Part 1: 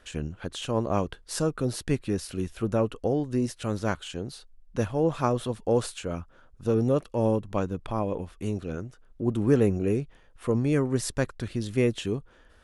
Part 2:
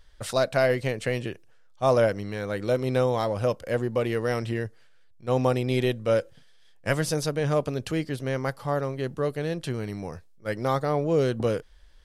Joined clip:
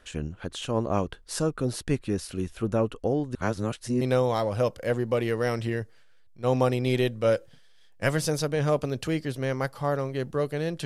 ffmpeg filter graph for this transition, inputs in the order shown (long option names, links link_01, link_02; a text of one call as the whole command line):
ffmpeg -i cue0.wav -i cue1.wav -filter_complex "[0:a]apad=whole_dur=10.85,atrim=end=10.85,asplit=2[link_01][link_02];[link_01]atrim=end=3.352[link_03];[link_02]atrim=start=3.348:end=4.012,asetpts=PTS-STARTPTS,areverse[link_04];[1:a]atrim=start=2.848:end=9.69[link_05];[link_03][link_04]acrossfade=duration=0.004:curve1=hsin:curve2=hsin[link_06];[link_06][link_05]acrossfade=duration=0.004:curve1=hsin:curve2=hsin" out.wav